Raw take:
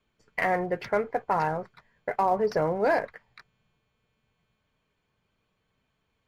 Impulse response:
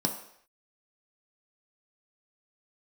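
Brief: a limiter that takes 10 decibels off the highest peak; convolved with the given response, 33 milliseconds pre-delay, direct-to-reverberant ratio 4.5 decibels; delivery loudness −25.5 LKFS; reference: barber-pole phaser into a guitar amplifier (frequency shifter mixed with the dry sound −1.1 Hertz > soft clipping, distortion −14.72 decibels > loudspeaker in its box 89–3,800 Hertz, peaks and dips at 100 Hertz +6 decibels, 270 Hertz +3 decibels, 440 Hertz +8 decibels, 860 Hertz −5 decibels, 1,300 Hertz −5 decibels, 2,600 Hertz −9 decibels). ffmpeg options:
-filter_complex "[0:a]alimiter=limit=-23.5dB:level=0:latency=1,asplit=2[link_01][link_02];[1:a]atrim=start_sample=2205,adelay=33[link_03];[link_02][link_03]afir=irnorm=-1:irlink=0,volume=-11dB[link_04];[link_01][link_04]amix=inputs=2:normalize=0,asplit=2[link_05][link_06];[link_06]afreqshift=-1.1[link_07];[link_05][link_07]amix=inputs=2:normalize=1,asoftclip=threshold=-27.5dB,highpass=89,equalizer=frequency=100:width_type=q:width=4:gain=6,equalizer=frequency=270:width_type=q:width=4:gain=3,equalizer=frequency=440:width_type=q:width=4:gain=8,equalizer=frequency=860:width_type=q:width=4:gain=-5,equalizer=frequency=1300:width_type=q:width=4:gain=-5,equalizer=frequency=2600:width_type=q:width=4:gain=-9,lowpass=frequency=3800:width=0.5412,lowpass=frequency=3800:width=1.3066,volume=8dB"

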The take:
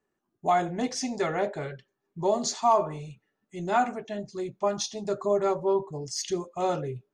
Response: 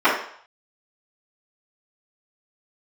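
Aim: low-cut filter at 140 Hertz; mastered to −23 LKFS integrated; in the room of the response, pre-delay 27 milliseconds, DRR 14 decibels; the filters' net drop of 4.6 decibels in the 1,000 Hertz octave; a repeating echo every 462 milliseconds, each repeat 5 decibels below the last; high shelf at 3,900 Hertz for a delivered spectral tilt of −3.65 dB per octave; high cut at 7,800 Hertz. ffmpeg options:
-filter_complex "[0:a]highpass=140,lowpass=7800,equalizer=frequency=1000:width_type=o:gain=-7,highshelf=frequency=3900:gain=3.5,aecho=1:1:462|924|1386|1848|2310|2772|3234:0.562|0.315|0.176|0.0988|0.0553|0.031|0.0173,asplit=2[link_01][link_02];[1:a]atrim=start_sample=2205,adelay=27[link_03];[link_02][link_03]afir=irnorm=-1:irlink=0,volume=-37.5dB[link_04];[link_01][link_04]amix=inputs=2:normalize=0,volume=6.5dB"

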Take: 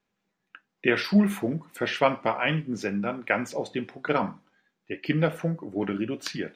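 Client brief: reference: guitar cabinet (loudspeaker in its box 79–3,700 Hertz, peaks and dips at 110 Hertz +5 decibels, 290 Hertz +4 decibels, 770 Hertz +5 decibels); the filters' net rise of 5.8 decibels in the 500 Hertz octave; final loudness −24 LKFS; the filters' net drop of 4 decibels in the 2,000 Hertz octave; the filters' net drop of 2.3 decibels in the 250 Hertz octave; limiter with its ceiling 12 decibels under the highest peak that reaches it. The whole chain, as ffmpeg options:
ffmpeg -i in.wav -af "equalizer=frequency=250:width_type=o:gain=-7.5,equalizer=frequency=500:width_type=o:gain=8,equalizer=frequency=2000:width_type=o:gain=-5.5,alimiter=limit=-17dB:level=0:latency=1,highpass=79,equalizer=frequency=110:width_type=q:width=4:gain=5,equalizer=frequency=290:width_type=q:width=4:gain=4,equalizer=frequency=770:width_type=q:width=4:gain=5,lowpass=frequency=3700:width=0.5412,lowpass=frequency=3700:width=1.3066,volume=5.5dB" out.wav

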